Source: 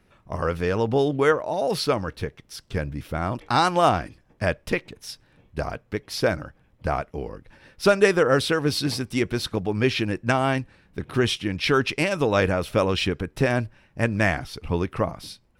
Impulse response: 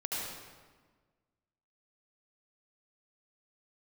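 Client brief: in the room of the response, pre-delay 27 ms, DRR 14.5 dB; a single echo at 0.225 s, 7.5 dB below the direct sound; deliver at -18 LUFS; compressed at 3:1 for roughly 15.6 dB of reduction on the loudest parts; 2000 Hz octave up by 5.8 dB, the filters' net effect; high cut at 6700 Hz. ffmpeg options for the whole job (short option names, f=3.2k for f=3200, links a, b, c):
-filter_complex "[0:a]lowpass=6.7k,equalizer=f=2k:t=o:g=7.5,acompressor=threshold=-33dB:ratio=3,aecho=1:1:225:0.422,asplit=2[a][b];[1:a]atrim=start_sample=2205,adelay=27[c];[b][c]afir=irnorm=-1:irlink=0,volume=-19dB[d];[a][d]amix=inputs=2:normalize=0,volume=15.5dB"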